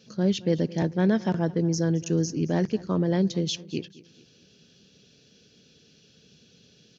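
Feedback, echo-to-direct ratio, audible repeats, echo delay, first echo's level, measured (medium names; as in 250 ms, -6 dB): 43%, -19.0 dB, 3, 219 ms, -20.0 dB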